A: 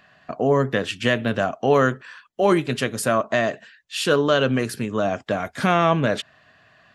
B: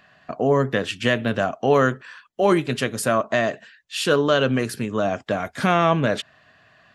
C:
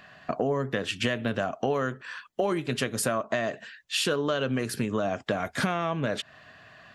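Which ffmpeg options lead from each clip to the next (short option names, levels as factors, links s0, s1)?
-af anull
-af "acompressor=threshold=0.0398:ratio=6,volume=1.5"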